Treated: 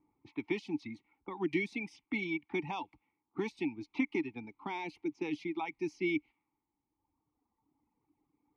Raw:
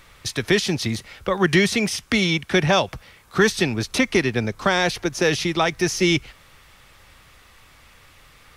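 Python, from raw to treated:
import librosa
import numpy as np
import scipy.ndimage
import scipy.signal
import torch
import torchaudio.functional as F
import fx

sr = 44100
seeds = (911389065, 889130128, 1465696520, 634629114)

y = fx.env_lowpass(x, sr, base_hz=540.0, full_db=-18.5)
y = fx.dereverb_blind(y, sr, rt60_s=1.8)
y = fx.vowel_filter(y, sr, vowel='u')
y = y * 10.0 ** (-2.5 / 20.0)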